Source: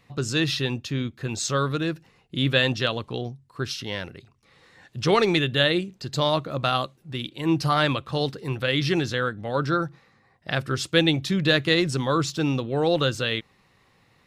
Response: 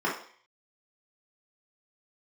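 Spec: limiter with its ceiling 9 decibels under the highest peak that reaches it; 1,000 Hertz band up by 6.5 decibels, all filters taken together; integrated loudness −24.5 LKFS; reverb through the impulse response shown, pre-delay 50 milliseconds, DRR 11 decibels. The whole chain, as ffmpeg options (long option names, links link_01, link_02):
-filter_complex "[0:a]equalizer=frequency=1000:width_type=o:gain=8.5,alimiter=limit=-12dB:level=0:latency=1,asplit=2[link_01][link_02];[1:a]atrim=start_sample=2205,adelay=50[link_03];[link_02][link_03]afir=irnorm=-1:irlink=0,volume=-23dB[link_04];[link_01][link_04]amix=inputs=2:normalize=0"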